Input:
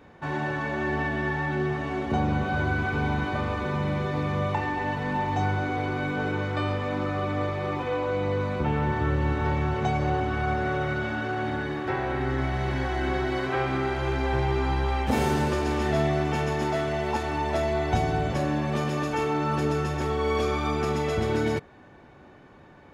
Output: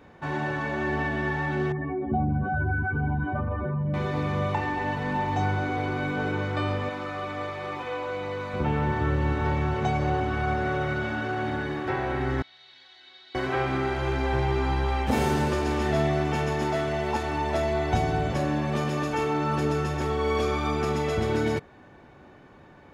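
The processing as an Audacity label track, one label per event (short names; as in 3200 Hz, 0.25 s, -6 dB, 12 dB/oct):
1.720000	3.940000	spectral contrast raised exponent 2.1
6.890000	8.540000	low shelf 440 Hz -11 dB
12.420000	13.350000	band-pass 3900 Hz, Q 7.1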